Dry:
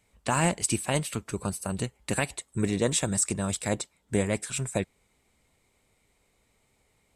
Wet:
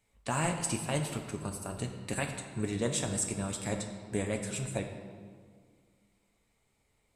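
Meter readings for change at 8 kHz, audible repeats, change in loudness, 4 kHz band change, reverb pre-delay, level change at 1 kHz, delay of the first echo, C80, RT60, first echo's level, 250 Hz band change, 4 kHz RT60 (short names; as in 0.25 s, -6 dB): -6.0 dB, none, -5.5 dB, -5.5 dB, 7 ms, -5.0 dB, none, 7.5 dB, 1.9 s, none, -5.5 dB, 1.3 s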